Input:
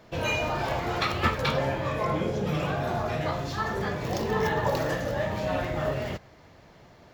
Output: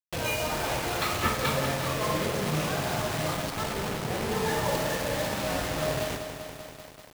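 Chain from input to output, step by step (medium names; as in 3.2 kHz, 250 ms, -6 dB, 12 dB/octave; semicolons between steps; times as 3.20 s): 3.50–4.47 s: low-pass 1.2 kHz 12 dB/octave; bit crusher 5-bit; on a send: flutter echo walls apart 8.9 m, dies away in 0.32 s; on the sum: bit-crushed delay 194 ms, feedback 80%, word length 7-bit, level -9 dB; trim -3 dB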